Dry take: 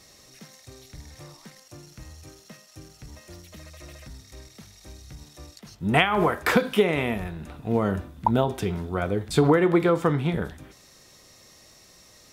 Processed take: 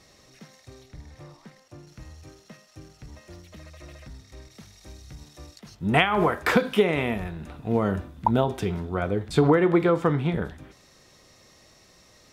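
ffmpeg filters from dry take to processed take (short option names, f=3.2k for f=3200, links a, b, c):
-af "asetnsamples=n=441:p=0,asendcmd='0.83 lowpass f 1900;1.87 lowpass f 3500;4.51 lowpass f 7200;8.8 lowpass f 4100',lowpass=f=3.4k:p=1"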